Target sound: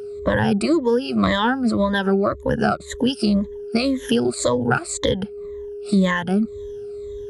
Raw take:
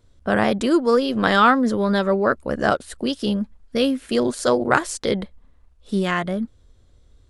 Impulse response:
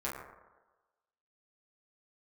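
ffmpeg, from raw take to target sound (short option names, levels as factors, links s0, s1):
-filter_complex "[0:a]afftfilt=real='re*pow(10,19/40*sin(2*PI*(1.1*log(max(b,1)*sr/1024/100)/log(2)-(-1.9)*(pts-256)/sr)))':imag='im*pow(10,19/40*sin(2*PI*(1.1*log(max(b,1)*sr/1024/100)/log(2)-(-1.9)*(pts-256)/sr)))':win_size=1024:overlap=0.75,highpass=53,aeval=exprs='val(0)+0.0141*sin(2*PI*410*n/s)':c=same,acrossover=split=140[s0][s1];[s1]acompressor=threshold=0.0501:ratio=6[s2];[s0][s2]amix=inputs=2:normalize=0,volume=2.37"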